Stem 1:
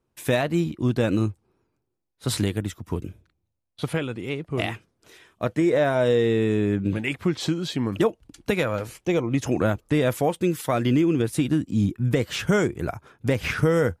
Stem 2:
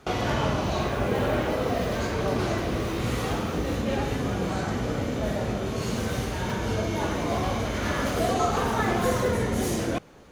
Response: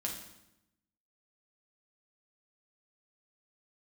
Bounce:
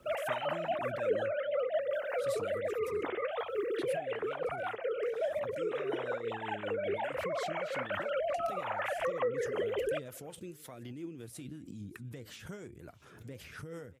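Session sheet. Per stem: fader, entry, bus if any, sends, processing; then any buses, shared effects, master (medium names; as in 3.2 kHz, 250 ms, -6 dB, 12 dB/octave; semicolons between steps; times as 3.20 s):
-16.0 dB, 0.00 s, no send, echo send -21.5 dB, treble shelf 6 kHz +6.5 dB; peak limiter -14.5 dBFS, peak gain reduction 6 dB; swell ahead of each attack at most 54 dB/s
+1.5 dB, 0.00 s, no send, no echo send, formants replaced by sine waves; compression, threshold -24 dBFS, peak gain reduction 10.5 dB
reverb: none
echo: delay 631 ms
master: rotary cabinet horn 5.5 Hz; high-pass 55 Hz; flange 1.1 Hz, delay 0.2 ms, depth 9.4 ms, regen +79%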